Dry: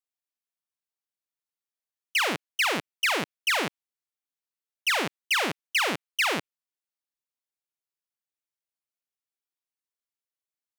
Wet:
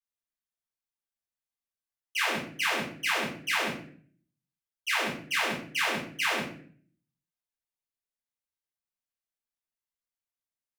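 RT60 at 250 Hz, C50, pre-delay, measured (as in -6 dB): 0.70 s, 4.5 dB, 3 ms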